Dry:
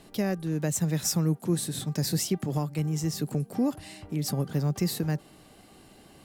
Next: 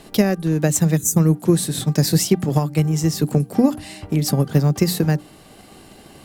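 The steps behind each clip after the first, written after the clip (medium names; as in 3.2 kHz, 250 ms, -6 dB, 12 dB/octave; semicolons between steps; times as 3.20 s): time-frequency box 0.97–1.17 s, 480–5900 Hz -20 dB; hum notches 60/120/180/240/300 Hz; transient shaper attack +5 dB, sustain -1 dB; trim +9 dB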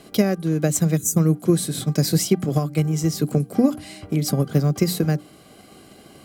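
comb of notches 900 Hz; trim -1.5 dB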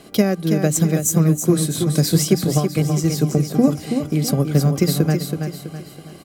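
feedback delay 327 ms, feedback 41%, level -6.5 dB; trim +2 dB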